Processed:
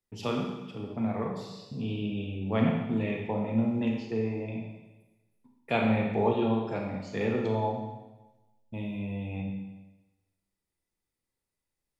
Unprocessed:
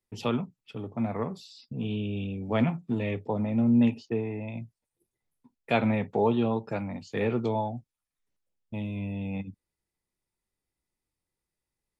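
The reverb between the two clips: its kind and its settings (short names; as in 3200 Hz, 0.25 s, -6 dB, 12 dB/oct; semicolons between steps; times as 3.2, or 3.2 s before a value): Schroeder reverb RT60 1.1 s, combs from 28 ms, DRR 0.5 dB; gain -3 dB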